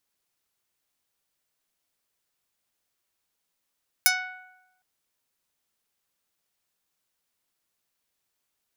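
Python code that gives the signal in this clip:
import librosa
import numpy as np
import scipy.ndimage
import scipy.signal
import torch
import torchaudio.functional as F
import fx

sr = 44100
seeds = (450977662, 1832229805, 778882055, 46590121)

y = fx.pluck(sr, length_s=0.76, note=78, decay_s=0.99, pick=0.19, brightness='medium')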